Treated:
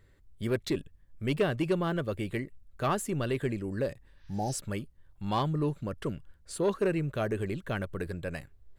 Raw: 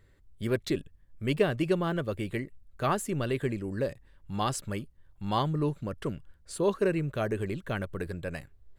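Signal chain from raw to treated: soft clip -18 dBFS, distortion -20 dB; spectral repair 4.17–4.53, 890–6400 Hz both

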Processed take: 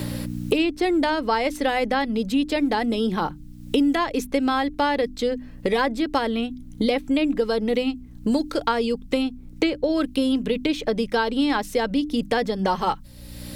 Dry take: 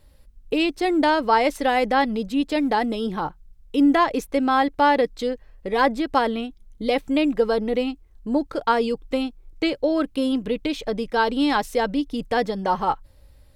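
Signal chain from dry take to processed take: bell 840 Hz -4.5 dB 1.8 oct; notches 50/100/150/200/250/300 Hz; hum 60 Hz, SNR 27 dB; three-band squash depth 100%; gain +1 dB

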